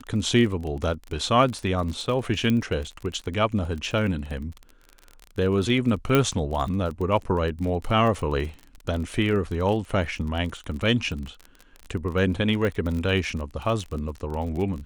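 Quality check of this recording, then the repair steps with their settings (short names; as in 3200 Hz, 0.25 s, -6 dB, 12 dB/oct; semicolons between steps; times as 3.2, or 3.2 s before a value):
crackle 29/s -30 dBFS
2.5 pop -13 dBFS
6.15 pop -7 dBFS
12.65 pop -16 dBFS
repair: de-click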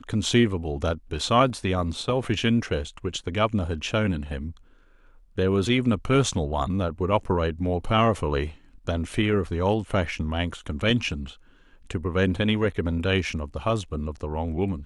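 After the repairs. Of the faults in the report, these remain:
2.5 pop
12.65 pop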